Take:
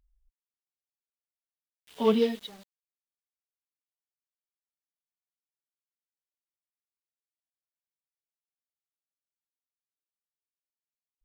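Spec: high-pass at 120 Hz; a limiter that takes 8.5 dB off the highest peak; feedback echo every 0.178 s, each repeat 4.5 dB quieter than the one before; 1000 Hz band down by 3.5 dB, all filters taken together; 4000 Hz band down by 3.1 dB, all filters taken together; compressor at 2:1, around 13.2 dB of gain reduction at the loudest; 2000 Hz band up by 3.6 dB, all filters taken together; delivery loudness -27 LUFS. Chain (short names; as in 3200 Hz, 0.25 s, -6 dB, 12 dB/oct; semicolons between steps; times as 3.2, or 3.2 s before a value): HPF 120 Hz; bell 1000 Hz -5.5 dB; bell 2000 Hz +8 dB; bell 4000 Hz -7.5 dB; compressor 2:1, threshold -44 dBFS; limiter -35 dBFS; feedback echo 0.178 s, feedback 60%, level -4.5 dB; gain +18.5 dB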